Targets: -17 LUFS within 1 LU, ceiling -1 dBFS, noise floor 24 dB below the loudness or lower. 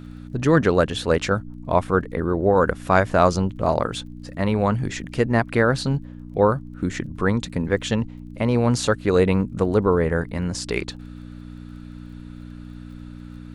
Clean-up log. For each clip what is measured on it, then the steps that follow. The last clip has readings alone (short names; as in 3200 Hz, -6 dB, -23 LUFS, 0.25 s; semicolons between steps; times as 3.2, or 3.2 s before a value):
ticks 26/s; hum 60 Hz; harmonics up to 300 Hz; hum level -35 dBFS; loudness -22.0 LUFS; peak -2.5 dBFS; loudness target -17.0 LUFS
-> de-click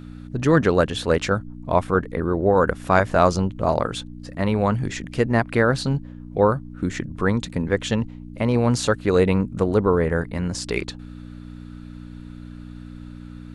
ticks 0.074/s; hum 60 Hz; harmonics up to 300 Hz; hum level -36 dBFS
-> de-hum 60 Hz, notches 5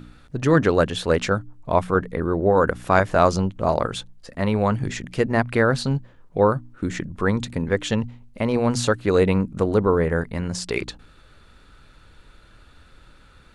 hum none; loudness -22.0 LUFS; peak -2.5 dBFS; loudness target -17.0 LUFS
-> gain +5 dB; limiter -1 dBFS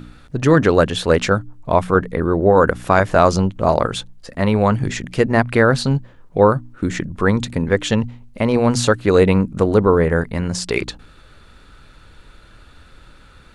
loudness -17.5 LUFS; peak -1.0 dBFS; noise floor -47 dBFS